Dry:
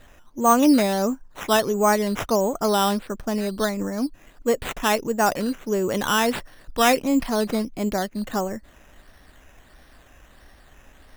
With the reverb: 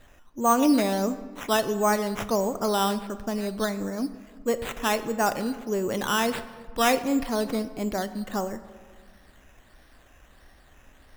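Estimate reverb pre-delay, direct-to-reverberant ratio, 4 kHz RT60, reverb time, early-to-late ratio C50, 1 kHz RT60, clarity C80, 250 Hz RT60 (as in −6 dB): 20 ms, 12.0 dB, 0.95 s, 1.6 s, 13.5 dB, 1.6 s, 15.0 dB, 2.0 s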